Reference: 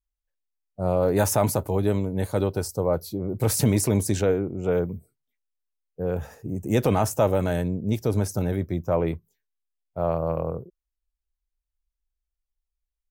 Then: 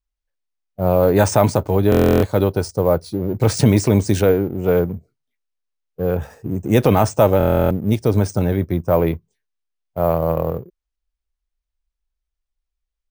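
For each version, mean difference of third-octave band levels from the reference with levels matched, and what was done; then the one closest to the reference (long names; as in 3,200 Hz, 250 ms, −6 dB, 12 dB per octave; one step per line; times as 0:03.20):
3.0 dB: in parallel at −5 dB: dead-zone distortion −39.5 dBFS
on the sum: bad sample-rate conversion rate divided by 3×, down filtered, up hold
buffer that repeats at 0:01.90/0:07.38, samples 1,024, times 13
level +3.5 dB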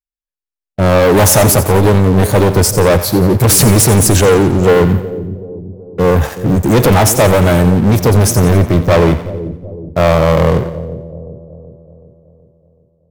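8.5 dB: leveller curve on the samples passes 5
automatic gain control
on a send: echo with a time of its own for lows and highs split 560 Hz, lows 376 ms, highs 88 ms, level −12 dB
on the sum: level −3.5 dB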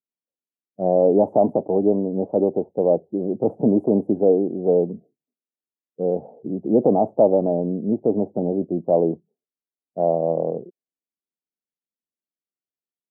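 11.0 dB: elliptic low-pass filter 750 Hz, stop band 60 dB
low-pass that shuts in the quiet parts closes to 370 Hz, open at −18.5 dBFS
high-pass filter 200 Hz 24 dB per octave
level +7 dB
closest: first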